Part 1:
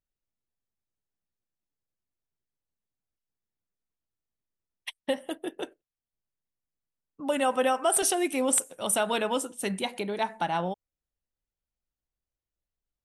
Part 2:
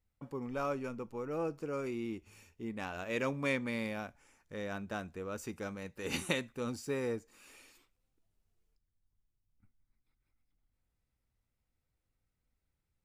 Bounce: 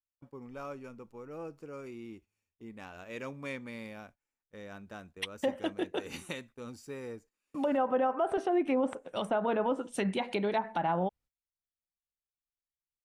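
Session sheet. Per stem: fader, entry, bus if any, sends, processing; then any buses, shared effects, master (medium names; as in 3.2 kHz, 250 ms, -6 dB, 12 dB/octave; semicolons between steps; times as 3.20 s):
+1.5 dB, 0.35 s, no send, low-pass that closes with the level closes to 1.2 kHz, closed at -23.5 dBFS; peak limiter -22.5 dBFS, peak gain reduction 6 dB
-6.5 dB, 0.00 s, no send, none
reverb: none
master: gate -55 dBFS, range -21 dB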